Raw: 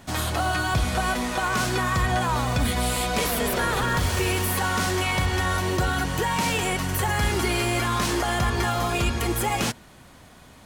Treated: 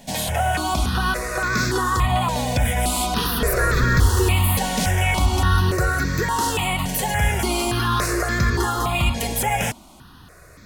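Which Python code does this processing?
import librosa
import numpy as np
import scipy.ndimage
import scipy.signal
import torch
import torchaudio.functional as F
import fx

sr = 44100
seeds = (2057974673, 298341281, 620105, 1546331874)

y = fx.low_shelf(x, sr, hz=100.0, db=9.5, at=(3.42, 5.71))
y = fx.phaser_held(y, sr, hz=3.5, low_hz=340.0, high_hz=3000.0)
y = y * 10.0 ** (5.5 / 20.0)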